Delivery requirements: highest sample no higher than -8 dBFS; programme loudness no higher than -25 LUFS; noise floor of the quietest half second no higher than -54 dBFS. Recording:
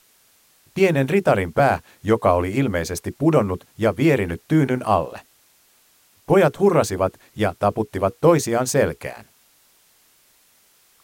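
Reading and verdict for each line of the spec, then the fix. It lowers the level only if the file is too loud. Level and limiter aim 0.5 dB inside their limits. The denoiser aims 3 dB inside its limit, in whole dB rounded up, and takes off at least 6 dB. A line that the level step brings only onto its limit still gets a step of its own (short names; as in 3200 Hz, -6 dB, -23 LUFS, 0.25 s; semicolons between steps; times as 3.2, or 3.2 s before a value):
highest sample -3.5 dBFS: fail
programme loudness -20.0 LUFS: fail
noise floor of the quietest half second -58 dBFS: OK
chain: gain -5.5 dB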